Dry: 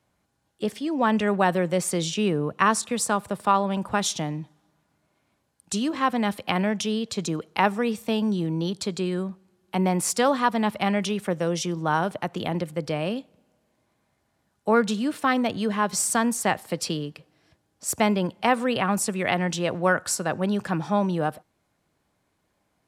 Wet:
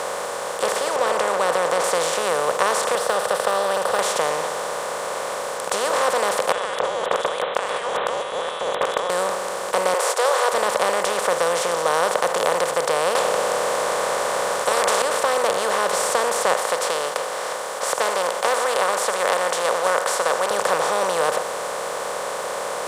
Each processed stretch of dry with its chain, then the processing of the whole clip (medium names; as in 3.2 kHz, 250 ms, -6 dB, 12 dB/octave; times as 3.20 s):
0.96–1.84 s: band-pass filter 220 Hz, Q 1.1 + spectrum-flattening compressor 2:1
2.95–3.99 s: de-esser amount 95% + static phaser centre 1.5 kHz, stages 8
6.52–9.10 s: frequency inversion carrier 3.6 kHz + tilt shelf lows +4.5 dB, about 850 Hz + compressor with a negative ratio -41 dBFS
9.94–10.53 s: gate -32 dBFS, range -13 dB + brick-wall FIR high-pass 380 Hz
13.15–15.02 s: treble shelf 12 kHz -11 dB + spectrum-flattening compressor 10:1
16.54–20.51 s: high-pass 920 Hz + band-stop 2.6 kHz, Q 8.8 + loudspeaker Doppler distortion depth 0.11 ms
whole clip: spectral levelling over time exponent 0.2; resonant low shelf 370 Hz -10 dB, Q 3; trim -7.5 dB